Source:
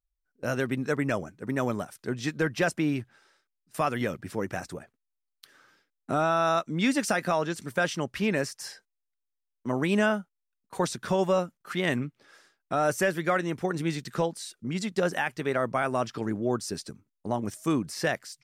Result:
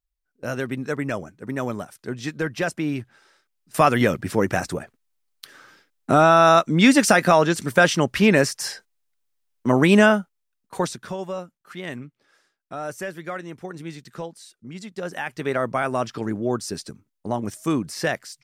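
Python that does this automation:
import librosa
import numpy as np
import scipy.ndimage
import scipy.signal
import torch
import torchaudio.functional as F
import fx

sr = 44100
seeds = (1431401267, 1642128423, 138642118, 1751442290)

y = fx.gain(x, sr, db=fx.line((2.83, 1.0), (3.82, 10.5), (9.89, 10.5), (10.82, 3.5), (11.18, -6.0), (14.97, -6.0), (15.45, 3.5)))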